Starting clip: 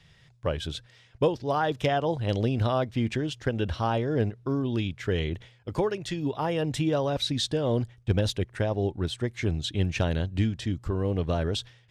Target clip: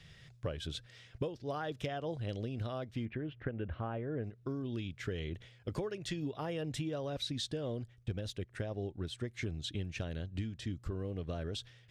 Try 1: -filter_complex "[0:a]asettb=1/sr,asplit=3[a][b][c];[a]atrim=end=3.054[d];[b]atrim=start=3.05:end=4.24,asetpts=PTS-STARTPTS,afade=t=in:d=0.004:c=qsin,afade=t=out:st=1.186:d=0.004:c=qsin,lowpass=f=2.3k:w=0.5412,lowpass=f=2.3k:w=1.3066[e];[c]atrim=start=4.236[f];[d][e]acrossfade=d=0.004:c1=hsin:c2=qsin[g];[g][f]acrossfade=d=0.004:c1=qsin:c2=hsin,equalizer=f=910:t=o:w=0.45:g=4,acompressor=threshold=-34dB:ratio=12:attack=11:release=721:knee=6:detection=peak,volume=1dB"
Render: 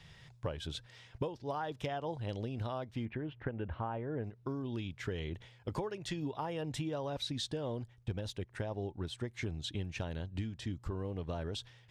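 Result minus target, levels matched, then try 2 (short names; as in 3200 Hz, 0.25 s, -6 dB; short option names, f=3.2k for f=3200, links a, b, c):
1000 Hz band +4.0 dB
-filter_complex "[0:a]asettb=1/sr,asplit=3[a][b][c];[a]atrim=end=3.054[d];[b]atrim=start=3.05:end=4.24,asetpts=PTS-STARTPTS,afade=t=in:d=0.004:c=qsin,afade=t=out:st=1.186:d=0.004:c=qsin,lowpass=f=2.3k:w=0.5412,lowpass=f=2.3k:w=1.3066[e];[c]atrim=start=4.236[f];[d][e]acrossfade=d=0.004:c1=hsin:c2=qsin[g];[g][f]acrossfade=d=0.004:c1=qsin:c2=hsin,equalizer=f=910:t=o:w=0.45:g=-7,acompressor=threshold=-34dB:ratio=12:attack=11:release=721:knee=6:detection=peak,volume=1dB"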